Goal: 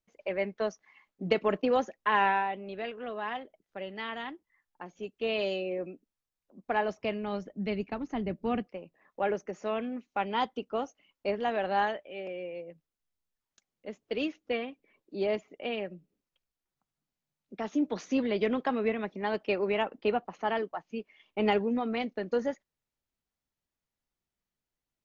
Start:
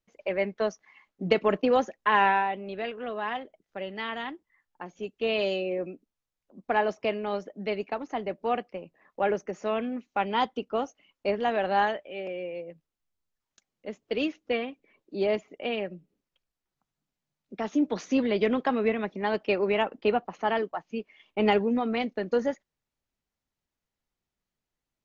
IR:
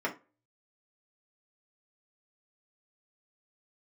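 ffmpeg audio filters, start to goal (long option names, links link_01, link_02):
-filter_complex "[0:a]asettb=1/sr,asplit=3[link_01][link_02][link_03];[link_01]atrim=end=6.664[link_04];[link_02]atrim=start=6.66:end=8.67,asetpts=PTS-STARTPTS,afade=type=in:duration=0.004:curve=qsin,afade=type=out:start_time=2.006:duration=0.004:curve=qsin,asubboost=boost=11:cutoff=240[link_05];[link_03]atrim=start=8.666[link_06];[link_04][link_05]acrossfade=duration=0.004:curve1=hsin:curve2=qsin[link_07];[link_07][link_06]acrossfade=duration=0.004:curve1=qsin:curve2=hsin,volume=-3.5dB"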